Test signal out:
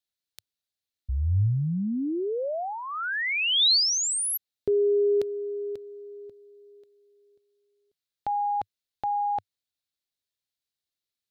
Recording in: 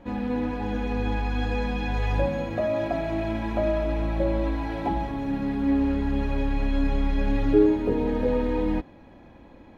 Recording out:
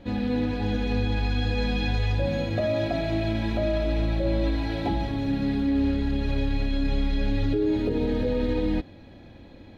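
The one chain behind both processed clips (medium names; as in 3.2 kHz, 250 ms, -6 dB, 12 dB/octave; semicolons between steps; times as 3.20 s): fifteen-band graphic EQ 100 Hz +7 dB, 1 kHz -8 dB, 4 kHz +10 dB; peak limiter -18 dBFS; trim +1.5 dB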